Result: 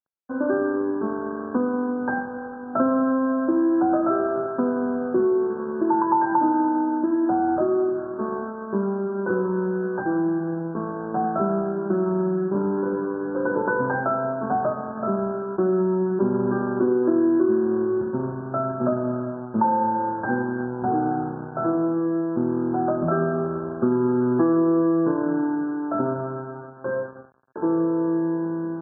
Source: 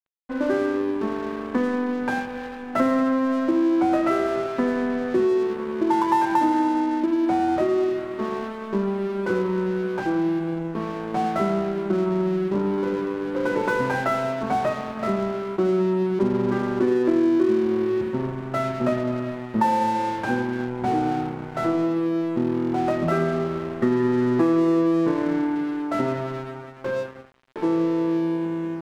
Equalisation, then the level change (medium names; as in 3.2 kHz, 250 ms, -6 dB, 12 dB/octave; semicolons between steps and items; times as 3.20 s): high-pass 88 Hz; brick-wall FIR low-pass 1.7 kHz; 0.0 dB